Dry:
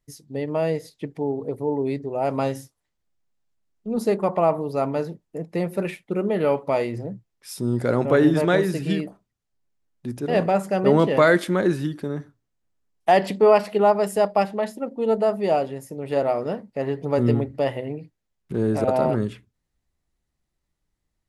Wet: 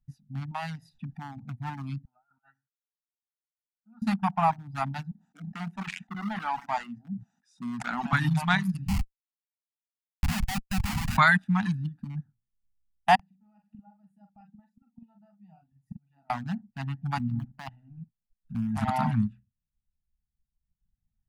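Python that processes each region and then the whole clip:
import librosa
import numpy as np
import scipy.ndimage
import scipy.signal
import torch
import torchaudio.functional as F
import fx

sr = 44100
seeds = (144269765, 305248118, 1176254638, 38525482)

y = fx.chain(x, sr, fx.low_shelf(hz=390.0, db=-9.0),
    fx.env_flatten(amount_pct=50), at=(0.51, 1.37))
y = fx.chain(y, sr, fx.bandpass_q(hz=1400.0, q=8.9),
    fx.over_compress(threshold_db=-48.0, ratio=-0.5), at=(2.05, 4.02))
y = fx.chain(y, sr, fx.cabinet(low_hz=240.0, low_slope=24, high_hz=7700.0, hz=(250.0, 390.0, 1100.0, 2500.0, 4500.0, 6600.0), db=(-5, 9, -4, -7, -6, 4)),
    fx.sustainer(db_per_s=75.0), at=(5.11, 8.13))
y = fx.chain(y, sr, fx.highpass(hz=240.0, slope=6),
    fx.schmitt(flips_db=-22.5), at=(8.87, 11.17))
y = fx.chain(y, sr, fx.peak_eq(hz=170.0, db=9.0, octaves=0.25),
    fx.gate_flip(shuts_db=-24.0, range_db=-27),
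    fx.doubler(ms=43.0, db=-4.0), at=(13.15, 16.3))
y = fx.chain(y, sr, fx.law_mismatch(coded='mu'),
    fx.peak_eq(hz=87.0, db=-14.5, octaves=0.34),
    fx.level_steps(step_db=13), at=(17.18, 18.77))
y = fx.wiener(y, sr, points=41)
y = fx.dereverb_blind(y, sr, rt60_s=1.4)
y = scipy.signal.sosfilt(scipy.signal.ellip(3, 1.0, 40, [230.0, 800.0], 'bandstop', fs=sr, output='sos'), y)
y = F.gain(torch.from_numpy(y), 3.5).numpy()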